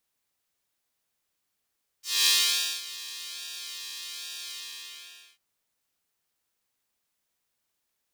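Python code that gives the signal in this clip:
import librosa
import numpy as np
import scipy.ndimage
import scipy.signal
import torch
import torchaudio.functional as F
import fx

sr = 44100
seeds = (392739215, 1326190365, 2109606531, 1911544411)

y = fx.sub_patch_pwm(sr, seeds[0], note=58, wave2='square', interval_st=7, detune_cents=23, level2_db=-3.5, sub_db=-27.0, noise_db=-19.0, kind='highpass', cutoff_hz=2900.0, q=1.8, env_oct=1.0, env_decay_s=0.09, env_sustain_pct=40, attack_ms=233.0, decay_s=0.55, sustain_db=-18.0, release_s=0.87, note_s=2.48, lfo_hz=1.2, width_pct=27, width_swing_pct=5)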